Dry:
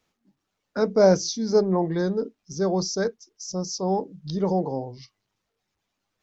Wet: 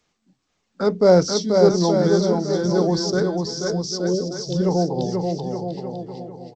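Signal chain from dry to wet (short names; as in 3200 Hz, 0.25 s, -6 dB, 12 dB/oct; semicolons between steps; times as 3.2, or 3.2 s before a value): spectral repair 3.45–4.17, 690–2900 Hz; bouncing-ball echo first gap 0.46 s, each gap 0.8×, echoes 5; varispeed -5%; gain +3 dB; G.722 64 kbps 16000 Hz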